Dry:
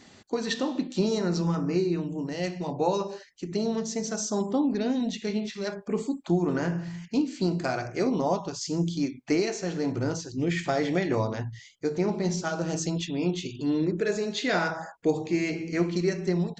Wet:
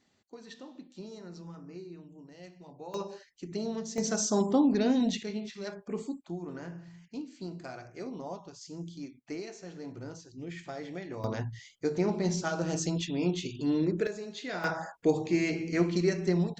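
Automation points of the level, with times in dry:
−19 dB
from 0:02.94 −6.5 dB
from 0:03.98 +1 dB
from 0:05.23 −7 dB
from 0:06.21 −14 dB
from 0:11.24 −2 dB
from 0:14.07 −11 dB
from 0:14.64 −1 dB

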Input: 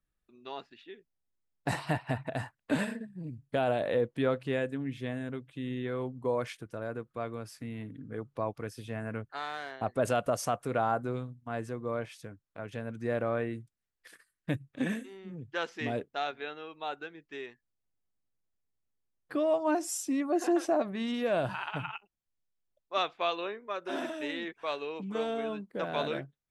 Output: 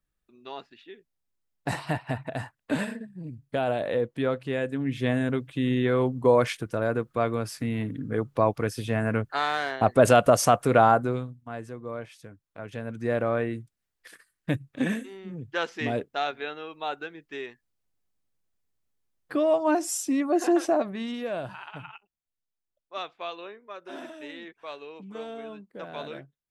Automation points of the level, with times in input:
0:04.55 +2 dB
0:05.10 +11 dB
0:10.85 +11 dB
0:11.58 −1.5 dB
0:12.17 −1.5 dB
0:13.08 +5 dB
0:20.66 +5 dB
0:21.53 −5 dB

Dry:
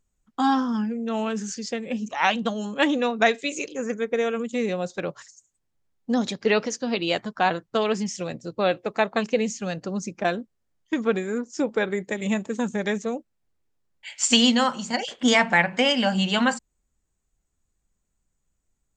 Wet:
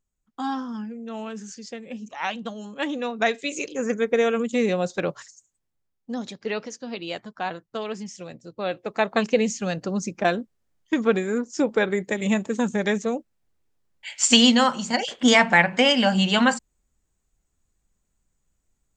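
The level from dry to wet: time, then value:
0:02.79 −7 dB
0:03.93 +3.5 dB
0:05.09 +3.5 dB
0:06.10 −7.5 dB
0:08.54 −7.5 dB
0:09.19 +2.5 dB

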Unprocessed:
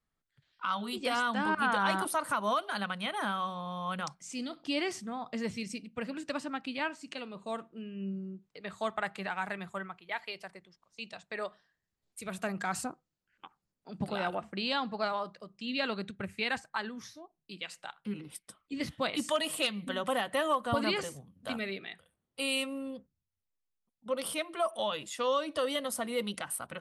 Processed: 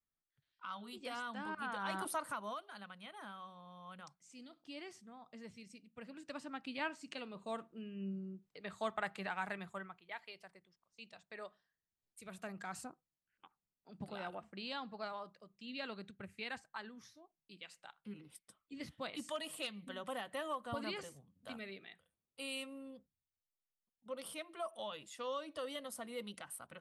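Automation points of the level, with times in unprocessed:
0:01.78 −13 dB
0:02.11 −6.5 dB
0:02.69 −17 dB
0:05.75 −17 dB
0:06.88 −5 dB
0:09.52 −5 dB
0:10.28 −11.5 dB

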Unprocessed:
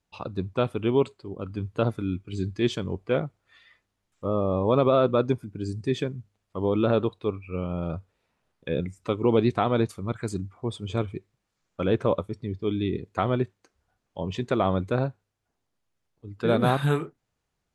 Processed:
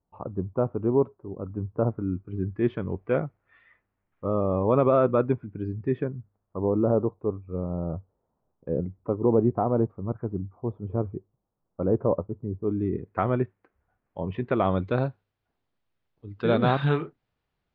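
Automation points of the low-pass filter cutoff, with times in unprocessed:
low-pass filter 24 dB per octave
0:01.89 1,100 Hz
0:02.92 2,200 Hz
0:05.64 2,200 Hz
0:06.76 1,000 Hz
0:12.55 1,000 Hz
0:13.19 2,200 Hz
0:14.38 2,200 Hz
0:14.93 4,200 Hz

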